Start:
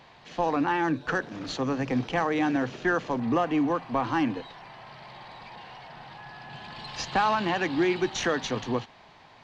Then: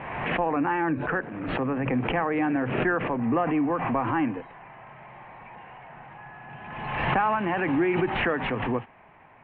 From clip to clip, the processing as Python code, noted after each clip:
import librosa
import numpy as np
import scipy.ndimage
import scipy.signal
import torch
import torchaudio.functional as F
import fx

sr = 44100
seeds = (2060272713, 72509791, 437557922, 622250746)

y = scipy.signal.sosfilt(scipy.signal.butter(8, 2600.0, 'lowpass', fs=sr, output='sos'), x)
y = fx.pre_swell(y, sr, db_per_s=37.0)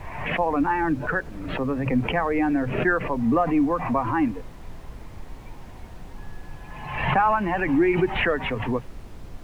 y = fx.bin_expand(x, sr, power=1.5)
y = fx.dmg_noise_colour(y, sr, seeds[0], colour='brown', level_db=-42.0)
y = y * 10.0 ** (5.5 / 20.0)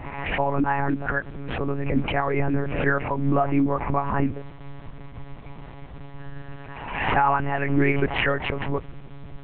y = fx.lpc_monotone(x, sr, seeds[1], pitch_hz=140.0, order=8)